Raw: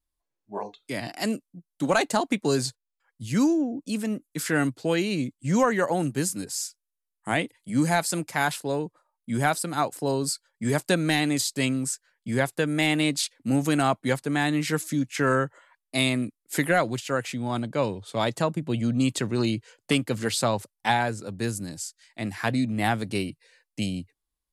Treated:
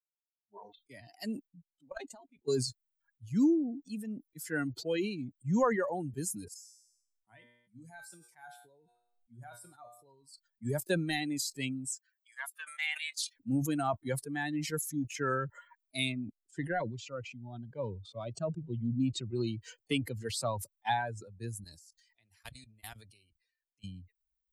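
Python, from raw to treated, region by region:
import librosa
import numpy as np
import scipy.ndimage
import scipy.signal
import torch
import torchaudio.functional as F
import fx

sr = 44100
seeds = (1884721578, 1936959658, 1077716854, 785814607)

y = fx.chain(x, sr, fx.high_shelf(hz=7300.0, db=-7.0),
    fx.comb(ms=7.5, depth=0.45),
    fx.level_steps(step_db=18), at=(1.47, 2.48))
y = fx.chain(y, sr, fx.comb_fb(f0_hz=120.0, decay_s=0.81, harmonics='all', damping=0.0, mix_pct=80),
    fx.sustainer(db_per_s=32.0), at=(6.54, 10.34))
y = fx.chain(y, sr, fx.highpass(hz=870.0, slope=24),
    fx.doppler_dist(depth_ms=0.14), at=(11.93, 13.36))
y = fx.chain(y, sr, fx.lowpass(hz=8800.0, slope=24),
    fx.high_shelf(hz=5300.0, db=-11.0),
    fx.notch_cascade(direction='rising', hz=1.0), at=(16.12, 19.3))
y = fx.chain(y, sr, fx.level_steps(step_db=24),
    fx.spectral_comp(ratio=2.0), at=(21.64, 23.84))
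y = fx.bin_expand(y, sr, power=2.0)
y = fx.dynamic_eq(y, sr, hz=320.0, q=1.3, threshold_db=-40.0, ratio=4.0, max_db=3)
y = fx.sustainer(y, sr, db_per_s=67.0)
y = y * librosa.db_to_amplitude(-5.0)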